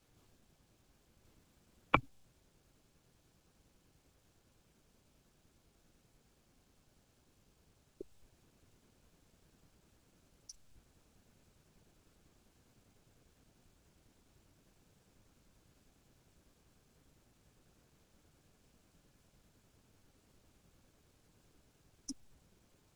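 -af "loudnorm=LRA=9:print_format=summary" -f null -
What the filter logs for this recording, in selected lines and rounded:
Input Integrated:    -41.9 LUFS
Input True Peak:      -6.2 dBTP
Input LRA:            26.2 LU
Input Threshold:     -60.9 LUFS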